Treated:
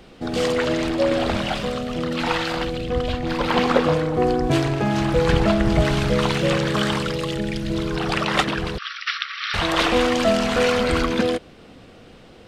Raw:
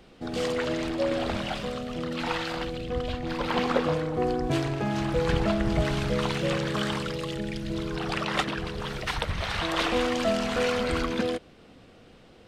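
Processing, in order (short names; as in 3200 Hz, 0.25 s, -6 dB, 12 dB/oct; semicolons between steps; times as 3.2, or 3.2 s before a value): 8.78–9.54 brick-wall FIR band-pass 1100–5900 Hz; gain +7 dB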